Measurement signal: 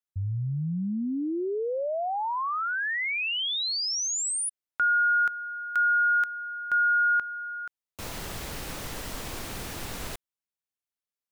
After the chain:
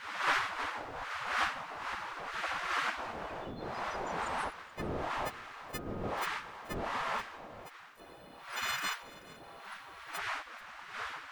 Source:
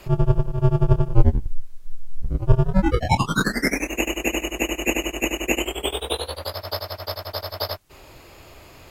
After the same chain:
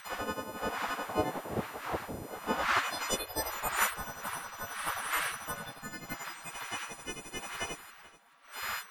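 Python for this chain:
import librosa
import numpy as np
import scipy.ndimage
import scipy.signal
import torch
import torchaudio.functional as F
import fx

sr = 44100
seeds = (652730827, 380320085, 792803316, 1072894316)

y = fx.freq_snap(x, sr, grid_st=3)
y = fx.dmg_wind(y, sr, seeds[0], corner_hz=430.0, level_db=-22.0)
y = fx.spec_gate(y, sr, threshold_db=-20, keep='weak')
y = y + 10.0 ** (-20.5 / 20.0) * np.pad(y, (int(431 * sr / 1000.0), 0))[:len(y)]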